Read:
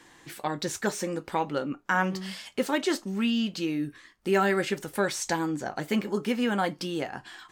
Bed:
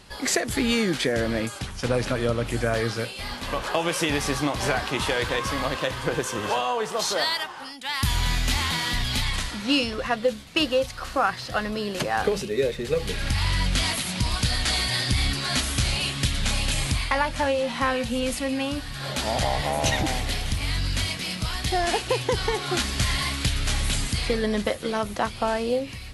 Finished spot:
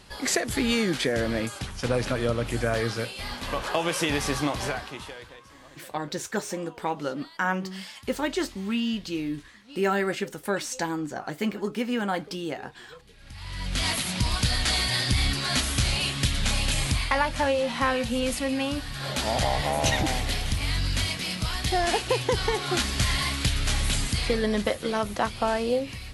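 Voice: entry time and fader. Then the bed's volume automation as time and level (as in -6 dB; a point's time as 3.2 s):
5.50 s, -1.0 dB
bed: 4.53 s -1.5 dB
5.49 s -25 dB
13.14 s -25 dB
13.88 s -0.5 dB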